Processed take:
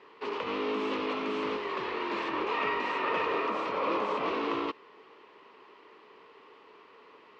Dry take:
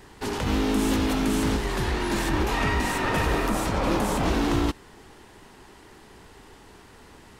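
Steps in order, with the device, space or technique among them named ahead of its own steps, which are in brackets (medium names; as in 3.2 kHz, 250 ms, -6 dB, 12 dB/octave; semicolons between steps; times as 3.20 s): phone earpiece (cabinet simulation 440–3700 Hz, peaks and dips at 450 Hz +7 dB, 770 Hz -8 dB, 1.1 kHz +8 dB, 1.6 kHz -7 dB, 2.5 kHz +3 dB, 3.6 kHz -4 dB); trim -3.5 dB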